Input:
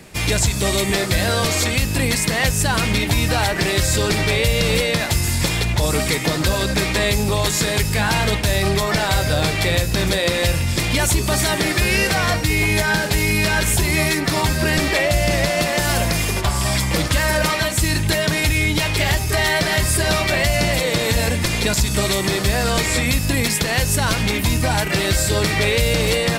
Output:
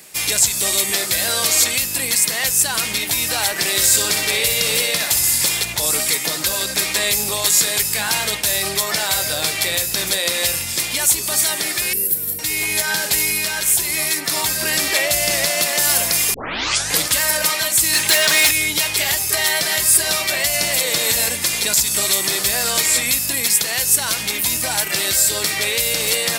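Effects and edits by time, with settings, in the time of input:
0:03.70–0:05.47: flutter between parallel walls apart 10.6 metres, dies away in 0.46 s
0:11.93–0:12.39: drawn EQ curve 450 Hz 0 dB, 740 Hz −26 dB, 6,000 Hz −15 dB, 13,000 Hz +11 dB
0:16.34: tape start 0.66 s
0:17.93–0:18.51: mid-hump overdrive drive 17 dB, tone 4,700 Hz, clips at −6.5 dBFS
whole clip: RIAA equalisation recording; automatic gain control; level −1 dB

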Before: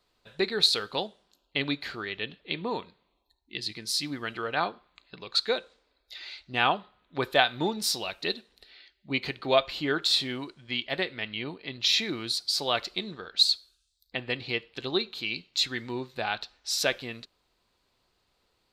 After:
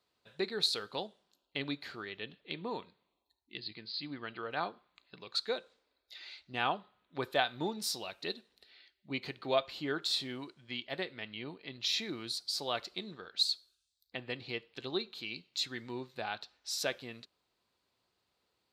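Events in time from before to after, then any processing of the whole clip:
0:03.58–0:04.51: Chebyshev low-pass filter 4,800 Hz, order 8
whole clip: high-pass filter 84 Hz; dynamic equaliser 2,500 Hz, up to −3 dB, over −38 dBFS, Q 0.94; level −7 dB

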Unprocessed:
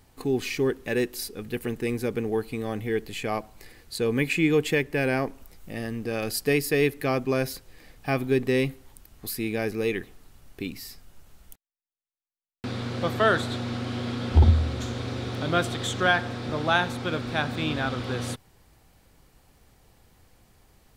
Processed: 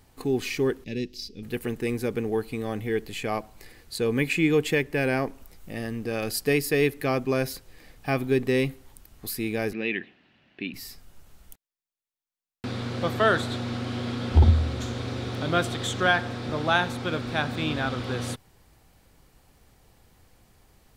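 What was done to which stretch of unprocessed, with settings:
0:00.84–0:01.43: drawn EQ curve 230 Hz 0 dB, 1,300 Hz −26 dB, 2,300 Hz −7 dB, 5,200 Hz +1 dB, 9,000 Hz −20 dB
0:09.73–0:10.74: loudspeaker in its box 210–3,700 Hz, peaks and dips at 210 Hz +4 dB, 450 Hz −8 dB, 850 Hz −4 dB, 1,200 Hz −8 dB, 1,800 Hz +5 dB, 2,700 Hz +7 dB

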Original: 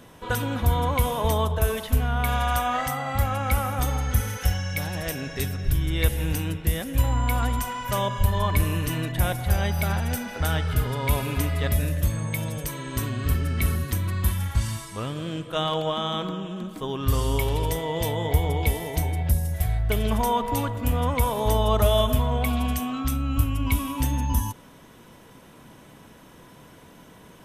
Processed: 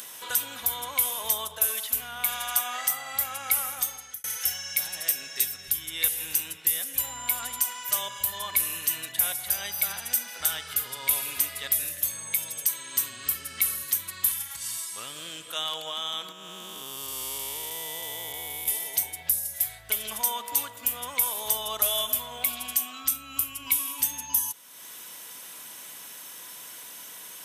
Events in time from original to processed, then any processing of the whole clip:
0:03.70–0:04.24: fade out
0:14.42–0:14.90: downward compressor 2.5 to 1, threshold −27 dBFS
0:16.32–0:18.68: spectrum smeared in time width 408 ms
whole clip: first difference; upward compression, threshold −40 dBFS; level +7.5 dB

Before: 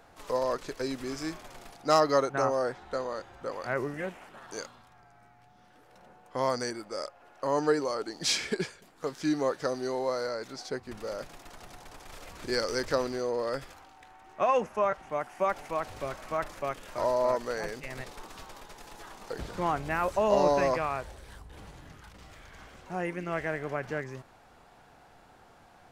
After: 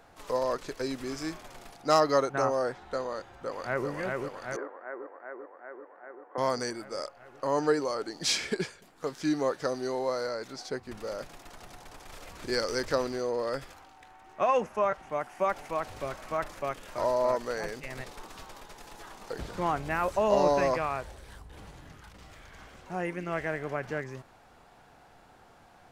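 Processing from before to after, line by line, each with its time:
0:03.19–0:03.89: delay throw 390 ms, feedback 75%, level −3 dB
0:04.56–0:06.38: Chebyshev band-pass filter 310–1,800 Hz, order 3

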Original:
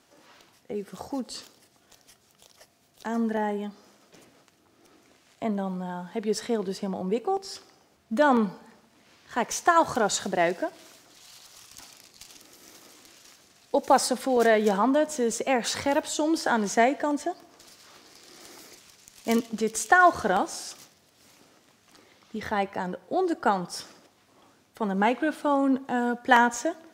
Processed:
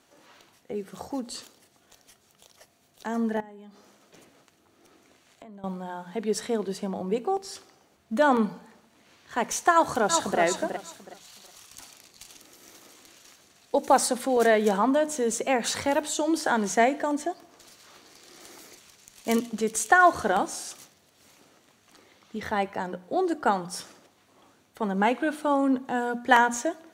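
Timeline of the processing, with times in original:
0:03.40–0:05.64: downward compressor 8 to 1, threshold −43 dBFS
0:09.72–0:10.39: delay throw 370 ms, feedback 25%, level −6 dB
whole clip: notch filter 5,100 Hz, Q 12; dynamic equaliser 9,900 Hz, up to +4 dB, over −53 dBFS, Q 1.4; mains-hum notches 60/120/180/240/300 Hz

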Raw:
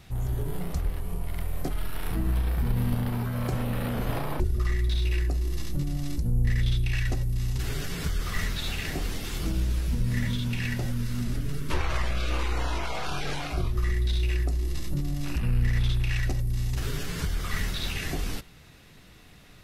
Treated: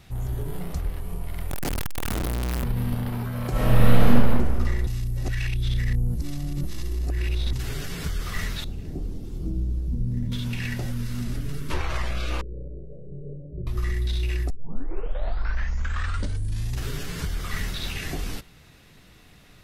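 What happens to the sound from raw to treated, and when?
0:01.51–0:02.64: sign of each sample alone
0:03.51–0:04.06: thrown reverb, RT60 2.2 s, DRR −10 dB
0:04.87–0:07.53: reverse
0:08.64–0:10.32: drawn EQ curve 330 Hz 0 dB, 1,900 Hz −25 dB, 5,400 Hz −18 dB
0:12.41–0:13.67: Chebyshev low-pass with heavy ripple 590 Hz, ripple 9 dB
0:14.50: tape start 2.28 s

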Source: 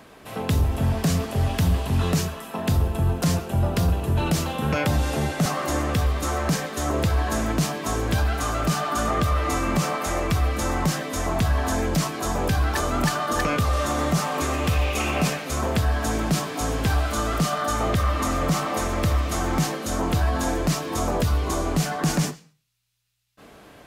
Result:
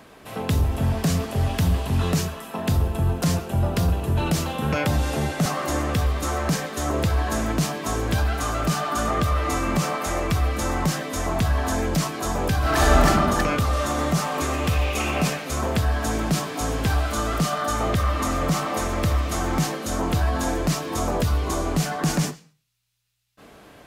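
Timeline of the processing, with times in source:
0:12.58–0:13.05: thrown reverb, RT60 1.7 s, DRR −6.5 dB

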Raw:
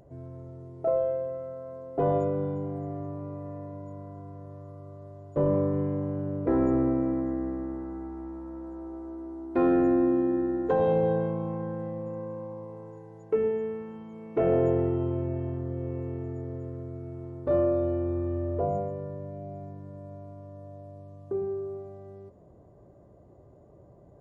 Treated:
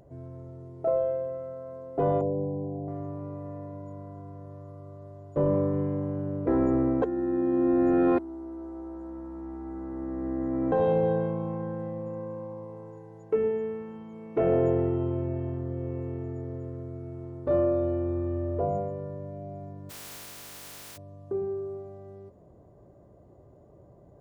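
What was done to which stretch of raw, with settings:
0:02.21–0:02.88: elliptic low-pass filter 900 Hz
0:07.02–0:10.72: reverse
0:19.89–0:20.96: compressing power law on the bin magnitudes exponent 0.13

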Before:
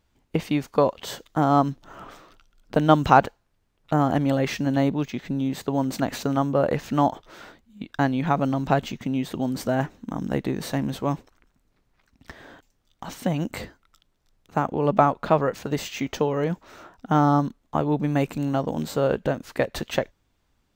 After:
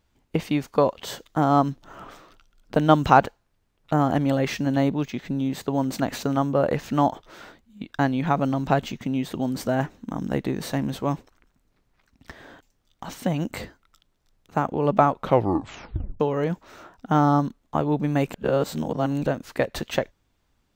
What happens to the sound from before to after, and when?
0:15.17: tape stop 1.03 s
0:18.34–0:19.26: reverse

